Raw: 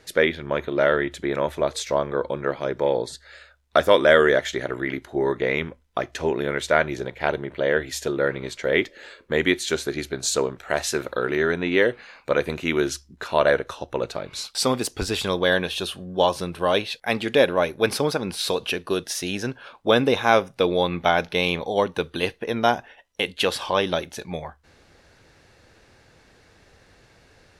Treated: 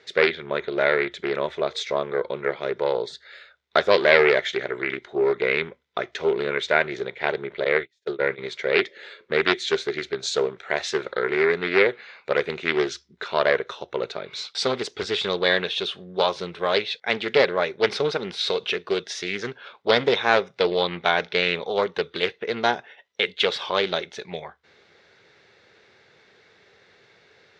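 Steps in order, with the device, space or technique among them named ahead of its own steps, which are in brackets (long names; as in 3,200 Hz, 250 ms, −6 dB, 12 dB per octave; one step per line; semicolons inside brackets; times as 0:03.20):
0:07.64–0:08.38: noise gate −24 dBFS, range −38 dB
full-range speaker at full volume (highs frequency-modulated by the lows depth 0.39 ms; loudspeaker in its box 160–6,300 Hz, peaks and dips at 280 Hz −8 dB, 410 Hz +8 dB, 1,400 Hz +4 dB, 2,100 Hz +8 dB, 3,600 Hz +8 dB)
level −3.5 dB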